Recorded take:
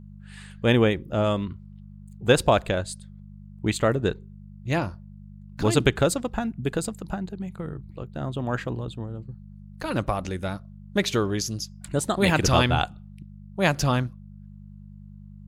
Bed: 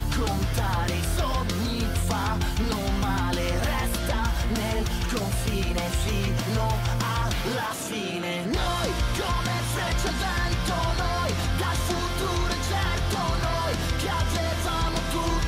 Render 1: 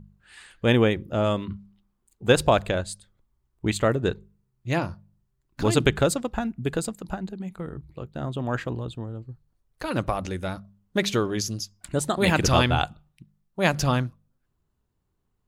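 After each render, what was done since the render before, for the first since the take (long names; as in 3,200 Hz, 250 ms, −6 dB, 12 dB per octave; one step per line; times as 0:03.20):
hum removal 50 Hz, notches 4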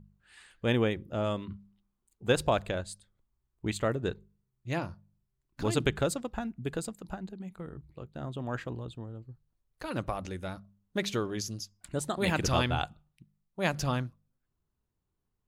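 level −7.5 dB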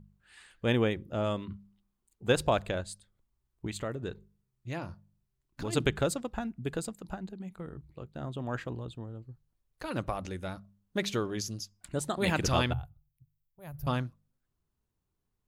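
0:03.66–0:05.73: downward compressor 2 to 1, threshold −35 dBFS
0:12.73–0:13.87: drawn EQ curve 130 Hz 0 dB, 190 Hz −22 dB, 820 Hz −18 dB, 2,900 Hz −27 dB, 8,100 Hz −25 dB, 13,000 Hz +5 dB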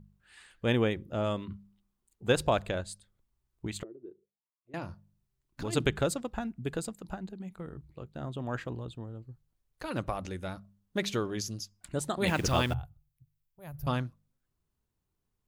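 0:03.83–0:04.74: envelope filter 350–1,200 Hz, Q 9.9, down, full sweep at −36.5 dBFS
0:12.27–0:12.74: hold until the input has moved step −43.5 dBFS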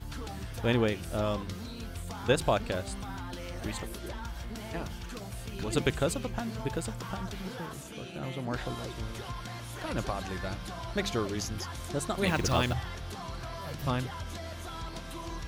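mix in bed −14 dB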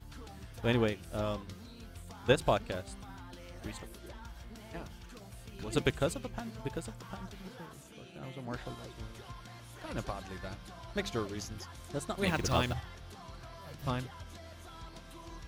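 expander for the loud parts 1.5 to 1, over −39 dBFS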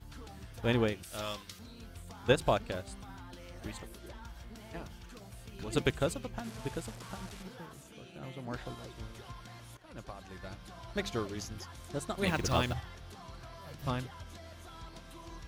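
0:01.03–0:01.59: tilt shelving filter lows −9 dB, about 1,300 Hz
0:06.44–0:07.43: linear delta modulator 64 kbit/s, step −42.5 dBFS
0:09.77–0:10.79: fade in, from −15 dB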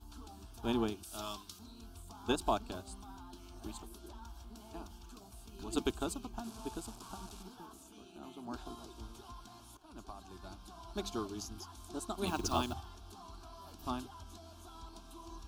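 phaser with its sweep stopped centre 520 Hz, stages 6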